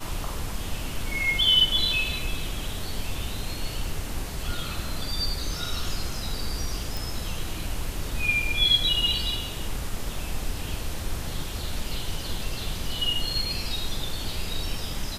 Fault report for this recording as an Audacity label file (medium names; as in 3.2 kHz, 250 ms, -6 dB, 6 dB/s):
6.970000	6.970000	pop